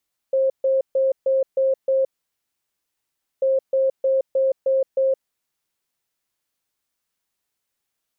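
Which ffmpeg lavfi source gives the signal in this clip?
ffmpeg -f lavfi -i "aevalsrc='0.168*sin(2*PI*533*t)*clip(min(mod(mod(t,3.09),0.31),0.17-mod(mod(t,3.09),0.31))/0.005,0,1)*lt(mod(t,3.09),1.86)':duration=6.18:sample_rate=44100" out.wav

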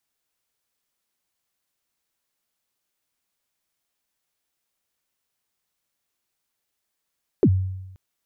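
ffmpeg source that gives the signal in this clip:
ffmpeg -f lavfi -i "aevalsrc='0.299*pow(10,-3*t/0.98)*sin(2*PI*(460*0.061/log(94/460)*(exp(log(94/460)*min(t,0.061)/0.061)-1)+94*max(t-0.061,0)))':duration=0.53:sample_rate=44100" out.wav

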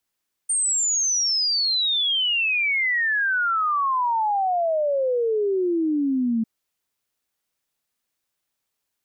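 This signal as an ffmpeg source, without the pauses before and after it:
ffmpeg -f lavfi -i "aevalsrc='0.112*clip(min(t,5.95-t)/0.01,0,1)*sin(2*PI*8900*5.95/log(220/8900)*(exp(log(220/8900)*t/5.95)-1))':duration=5.95:sample_rate=44100" out.wav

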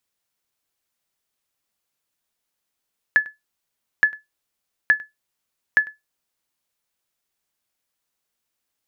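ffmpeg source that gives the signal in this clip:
ffmpeg -f lavfi -i "aevalsrc='0.473*(sin(2*PI*1720*mod(t,0.87))*exp(-6.91*mod(t,0.87)/0.17)+0.0708*sin(2*PI*1720*max(mod(t,0.87)-0.1,0))*exp(-6.91*max(mod(t,0.87)-0.1,0)/0.17))':duration=3.48:sample_rate=44100" out.wav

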